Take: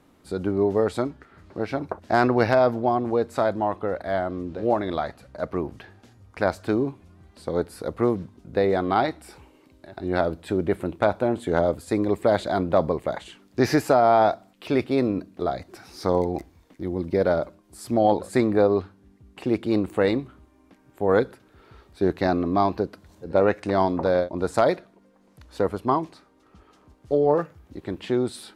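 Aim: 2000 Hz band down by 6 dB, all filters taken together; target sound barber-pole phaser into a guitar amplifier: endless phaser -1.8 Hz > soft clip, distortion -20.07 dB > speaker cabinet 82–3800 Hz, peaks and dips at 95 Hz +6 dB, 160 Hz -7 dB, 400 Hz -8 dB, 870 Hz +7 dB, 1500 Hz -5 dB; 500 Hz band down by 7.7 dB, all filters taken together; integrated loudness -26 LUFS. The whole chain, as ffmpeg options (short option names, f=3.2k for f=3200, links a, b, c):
-filter_complex "[0:a]equalizer=f=500:t=o:g=-8,equalizer=f=2k:t=o:g=-3.5,asplit=2[a][b];[b]afreqshift=-1.8[c];[a][c]amix=inputs=2:normalize=1,asoftclip=threshold=-18dB,highpass=82,equalizer=f=95:t=q:w=4:g=6,equalizer=f=160:t=q:w=4:g=-7,equalizer=f=400:t=q:w=4:g=-8,equalizer=f=870:t=q:w=4:g=7,equalizer=f=1.5k:t=q:w=4:g=-5,lowpass=f=3.8k:w=0.5412,lowpass=f=3.8k:w=1.3066,volume=6.5dB"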